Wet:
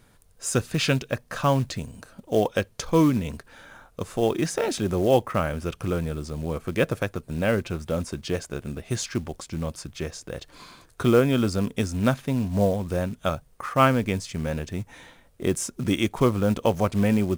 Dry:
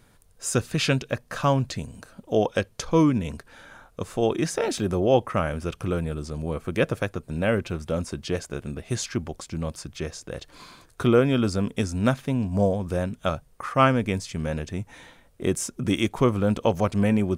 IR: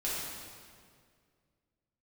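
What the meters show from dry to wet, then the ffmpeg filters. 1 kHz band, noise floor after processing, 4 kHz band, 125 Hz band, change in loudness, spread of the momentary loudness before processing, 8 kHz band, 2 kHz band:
0.0 dB, -57 dBFS, 0.0 dB, 0.0 dB, 0.0 dB, 13 LU, +0.5 dB, 0.0 dB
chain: -af "acrusher=bits=6:mode=log:mix=0:aa=0.000001"

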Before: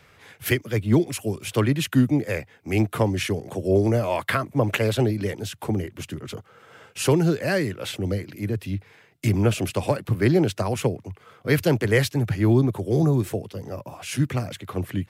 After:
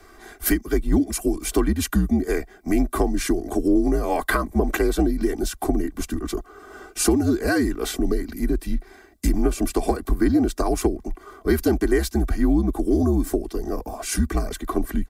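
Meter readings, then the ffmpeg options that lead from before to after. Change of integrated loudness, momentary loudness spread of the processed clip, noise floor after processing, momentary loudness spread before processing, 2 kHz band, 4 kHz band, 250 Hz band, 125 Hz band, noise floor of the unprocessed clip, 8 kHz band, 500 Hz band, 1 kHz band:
+0.5 dB, 9 LU, -49 dBFS, 13 LU, -1.0 dB, -2.0 dB, +3.0 dB, -6.0 dB, -55 dBFS, +5.5 dB, 0.0 dB, +2.0 dB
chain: -af "equalizer=f=2800:w=1.4:g=-13.5,aecho=1:1:2.5:0.96,acompressor=threshold=0.0631:ratio=3,afreqshift=-68,volume=2"

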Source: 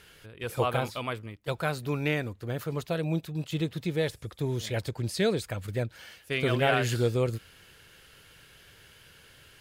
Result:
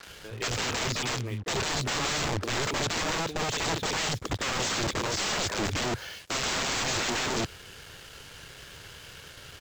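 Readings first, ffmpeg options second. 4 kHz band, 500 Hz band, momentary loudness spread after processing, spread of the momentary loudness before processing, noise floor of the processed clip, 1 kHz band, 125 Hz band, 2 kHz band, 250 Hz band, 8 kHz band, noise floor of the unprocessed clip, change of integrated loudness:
+9.0 dB, -4.0 dB, 18 LU, 10 LU, -48 dBFS, +3.5 dB, -4.5 dB, +3.5 dB, -2.5 dB, +13.5 dB, -56 dBFS, +1.5 dB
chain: -filter_complex "[0:a]acrossover=split=250|2100[s0][s1][s2];[s2]adelay=30[s3];[s0]adelay=70[s4];[s4][s1][s3]amix=inputs=3:normalize=0,alimiter=limit=0.0668:level=0:latency=1:release=195,adynamicequalizer=threshold=0.00501:dfrequency=400:dqfactor=4.4:tfrequency=400:tqfactor=4.4:attack=5:release=100:ratio=0.375:range=2:mode=boostabove:tftype=bell,aresample=16000,aeval=exprs='(mod(47.3*val(0)+1,2)-1)/47.3':c=same,aresample=44100,acrusher=bits=8:mix=0:aa=0.5,acompressor=mode=upward:threshold=0.00316:ratio=2.5,volume=2.82"

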